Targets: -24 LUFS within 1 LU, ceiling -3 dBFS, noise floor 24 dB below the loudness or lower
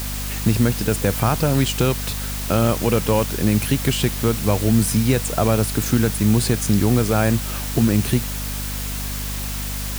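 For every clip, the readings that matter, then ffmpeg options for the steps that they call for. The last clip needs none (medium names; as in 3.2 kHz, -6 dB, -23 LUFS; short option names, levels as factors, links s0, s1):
hum 50 Hz; highest harmonic 250 Hz; hum level -26 dBFS; noise floor -27 dBFS; noise floor target -44 dBFS; loudness -20.0 LUFS; peak level -4.0 dBFS; loudness target -24.0 LUFS
-> -af "bandreject=f=50:t=h:w=6,bandreject=f=100:t=h:w=6,bandreject=f=150:t=h:w=6,bandreject=f=200:t=h:w=6,bandreject=f=250:t=h:w=6"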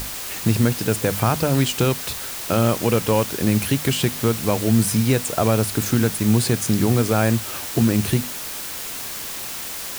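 hum not found; noise floor -31 dBFS; noise floor target -45 dBFS
-> -af "afftdn=nr=14:nf=-31"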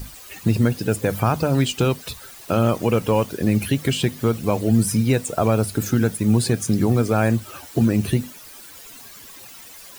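noise floor -42 dBFS; noise floor target -45 dBFS
-> -af "afftdn=nr=6:nf=-42"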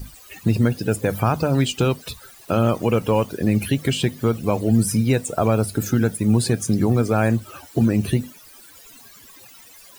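noise floor -46 dBFS; loudness -21.0 LUFS; peak level -4.5 dBFS; loudness target -24.0 LUFS
-> -af "volume=0.708"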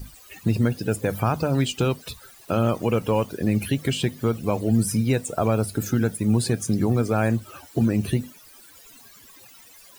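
loudness -24.0 LUFS; peak level -7.5 dBFS; noise floor -49 dBFS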